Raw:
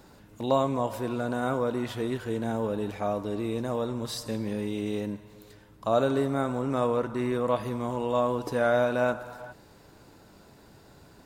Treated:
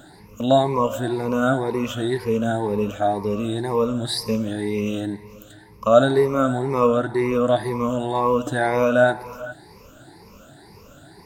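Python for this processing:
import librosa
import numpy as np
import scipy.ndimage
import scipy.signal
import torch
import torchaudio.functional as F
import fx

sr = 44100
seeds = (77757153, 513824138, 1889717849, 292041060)

y = fx.spec_ripple(x, sr, per_octave=0.84, drift_hz=2.0, depth_db=18)
y = F.gain(torch.from_numpy(y), 4.0).numpy()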